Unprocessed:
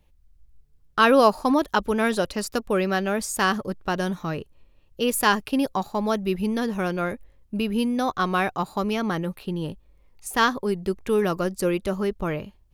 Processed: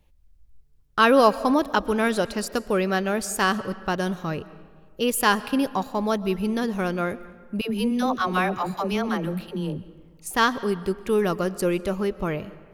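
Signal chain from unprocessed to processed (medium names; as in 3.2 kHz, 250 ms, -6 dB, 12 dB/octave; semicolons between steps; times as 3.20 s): 7.61–10.30 s: phase dispersion lows, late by 97 ms, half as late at 440 Hz; reverberation RT60 1.6 s, pre-delay 90 ms, DRR 16.5 dB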